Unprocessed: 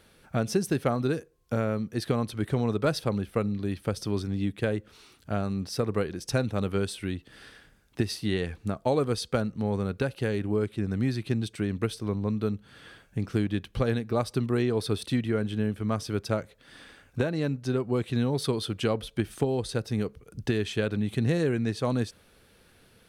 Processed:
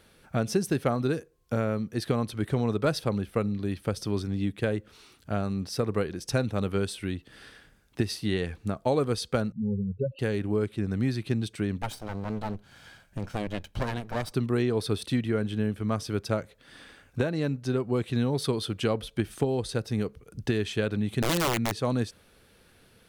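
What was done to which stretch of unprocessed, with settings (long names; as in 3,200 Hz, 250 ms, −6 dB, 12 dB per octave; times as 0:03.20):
0:09.52–0:10.19: expanding power law on the bin magnitudes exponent 3.9
0:11.82–0:14.32: lower of the sound and its delayed copy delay 1.3 ms
0:21.22–0:21.81: wrap-around overflow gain 20 dB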